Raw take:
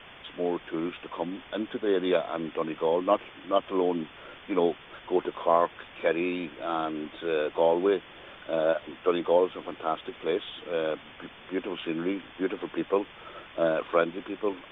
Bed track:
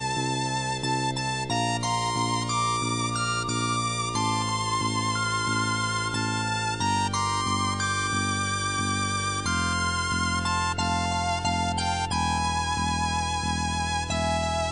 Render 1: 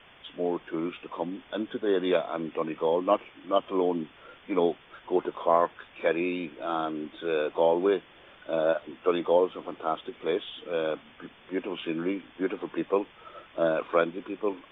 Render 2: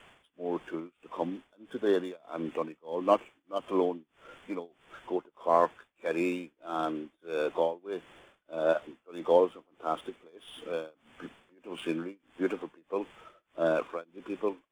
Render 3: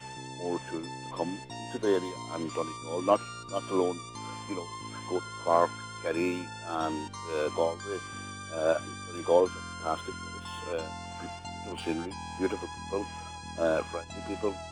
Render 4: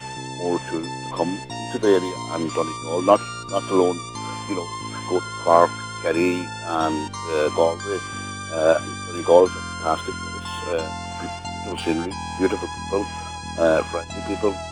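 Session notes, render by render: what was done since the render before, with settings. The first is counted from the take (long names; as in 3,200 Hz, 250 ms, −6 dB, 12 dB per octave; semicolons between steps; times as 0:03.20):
noise reduction from a noise print 6 dB
running median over 9 samples; amplitude tremolo 1.6 Hz, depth 98%
mix in bed track −15 dB
level +9.5 dB; brickwall limiter −1 dBFS, peak gain reduction 1 dB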